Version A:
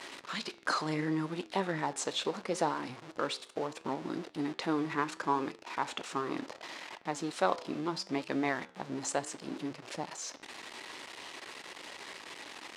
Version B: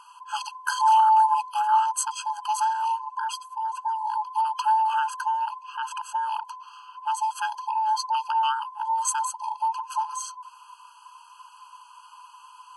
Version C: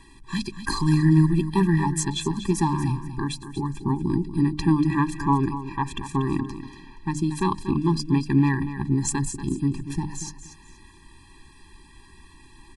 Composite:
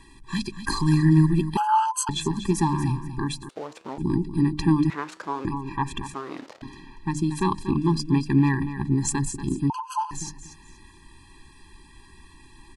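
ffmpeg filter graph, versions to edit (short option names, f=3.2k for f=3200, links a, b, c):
-filter_complex "[1:a]asplit=2[a][b];[0:a]asplit=3[c][d][e];[2:a]asplit=6[f][g][h][i][j][k];[f]atrim=end=1.572[l];[a]atrim=start=1.568:end=2.092[m];[g]atrim=start=2.088:end=3.492[n];[c]atrim=start=3.488:end=3.982[o];[h]atrim=start=3.978:end=4.902[p];[d]atrim=start=4.898:end=5.452[q];[i]atrim=start=5.448:end=6.142[r];[e]atrim=start=6.138:end=6.622[s];[j]atrim=start=6.618:end=9.702[t];[b]atrim=start=9.698:end=10.112[u];[k]atrim=start=10.108[v];[l][m]acrossfade=d=0.004:c1=hsin:c2=hsin[w];[w][n]acrossfade=d=0.004:c1=hsin:c2=hsin[x];[x][o]acrossfade=d=0.004:c1=hsin:c2=hsin[y];[y][p]acrossfade=d=0.004:c1=hsin:c2=hsin[z];[z][q]acrossfade=d=0.004:c1=hsin:c2=hsin[aa];[aa][r]acrossfade=d=0.004:c1=hsin:c2=hsin[ab];[ab][s]acrossfade=d=0.004:c1=hsin:c2=hsin[ac];[ac][t]acrossfade=d=0.004:c1=hsin:c2=hsin[ad];[ad][u]acrossfade=d=0.004:c1=hsin:c2=hsin[ae];[ae][v]acrossfade=d=0.004:c1=hsin:c2=hsin"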